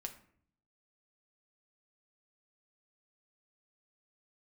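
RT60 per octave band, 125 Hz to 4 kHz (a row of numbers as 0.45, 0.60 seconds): 0.95, 0.85, 0.60, 0.55, 0.50, 0.35 seconds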